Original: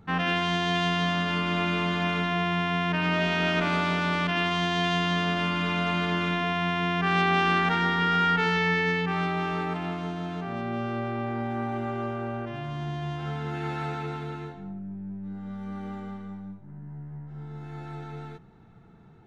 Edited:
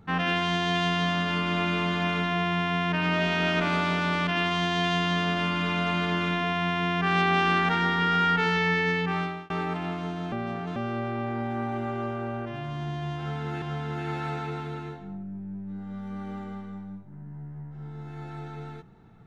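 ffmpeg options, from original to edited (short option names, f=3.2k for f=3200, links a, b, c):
-filter_complex "[0:a]asplit=5[a][b][c][d][e];[a]atrim=end=9.5,asetpts=PTS-STARTPTS,afade=t=out:st=9.16:d=0.34[f];[b]atrim=start=9.5:end=10.322,asetpts=PTS-STARTPTS,afade=t=in:d=0.004:c=hsin[g];[c]atrim=start=10.318:end=10.762,asetpts=PTS-STARTPTS,areverse[h];[d]atrim=start=10.758:end=13.622[i];[e]atrim=start=13.178[j];[f][g]concat=n=2:v=0:a=1[k];[k][h]acrossfade=d=0.004:c1=hsin:c2=hsin[l];[l][i]acrossfade=d=0.004:c1=hsin:c2=hsin[m];[m][j]acrossfade=d=0.004:c1=hsin:c2=hsin"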